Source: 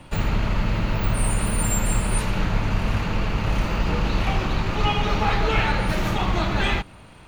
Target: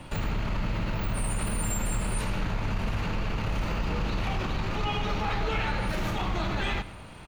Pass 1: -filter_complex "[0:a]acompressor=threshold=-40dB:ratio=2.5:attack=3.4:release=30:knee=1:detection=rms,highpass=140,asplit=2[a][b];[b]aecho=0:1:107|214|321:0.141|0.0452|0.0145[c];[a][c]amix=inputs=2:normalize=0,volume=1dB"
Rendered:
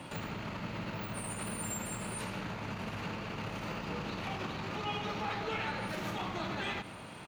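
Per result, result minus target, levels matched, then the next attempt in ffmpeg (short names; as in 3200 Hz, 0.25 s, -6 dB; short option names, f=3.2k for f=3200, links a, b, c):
compressor: peak gain reduction +5.5 dB; 125 Hz band -3.5 dB
-filter_complex "[0:a]acompressor=threshold=-31dB:ratio=2.5:attack=3.4:release=30:knee=1:detection=rms,highpass=140,asplit=2[a][b];[b]aecho=0:1:107|214|321:0.141|0.0452|0.0145[c];[a][c]amix=inputs=2:normalize=0,volume=1dB"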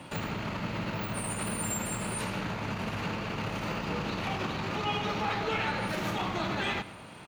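125 Hz band -3.5 dB
-filter_complex "[0:a]acompressor=threshold=-31dB:ratio=2.5:attack=3.4:release=30:knee=1:detection=rms,asplit=2[a][b];[b]aecho=0:1:107|214|321:0.141|0.0452|0.0145[c];[a][c]amix=inputs=2:normalize=0,volume=1dB"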